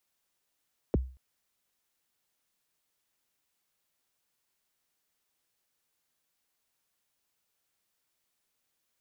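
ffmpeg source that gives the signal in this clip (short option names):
-f lavfi -i "aevalsrc='0.106*pow(10,-3*t/0.38)*sin(2*PI*(570*0.022/log(64/570)*(exp(log(64/570)*min(t,0.022)/0.022)-1)+64*max(t-0.022,0)))':d=0.23:s=44100"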